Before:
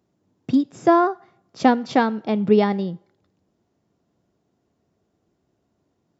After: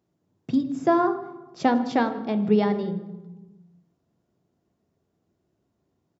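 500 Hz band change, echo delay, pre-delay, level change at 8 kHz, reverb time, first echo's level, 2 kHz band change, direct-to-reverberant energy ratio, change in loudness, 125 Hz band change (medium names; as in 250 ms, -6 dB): -4.0 dB, 156 ms, 3 ms, no reading, 1.2 s, -22.0 dB, -4.5 dB, 9.5 dB, -4.0 dB, -2.0 dB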